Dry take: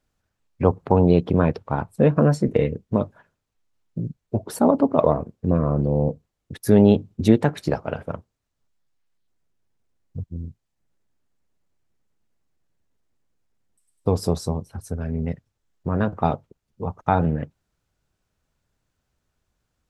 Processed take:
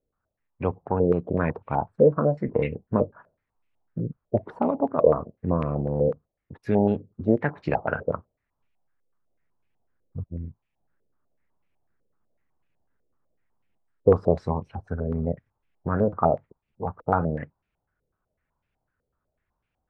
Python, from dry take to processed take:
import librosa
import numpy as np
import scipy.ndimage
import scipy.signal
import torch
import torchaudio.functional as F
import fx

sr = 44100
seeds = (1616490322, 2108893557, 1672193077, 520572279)

y = fx.rider(x, sr, range_db=4, speed_s=0.5)
y = fx.filter_held_lowpass(y, sr, hz=8.0, low_hz=490.0, high_hz=2500.0)
y = F.gain(torch.from_numpy(y), -6.0).numpy()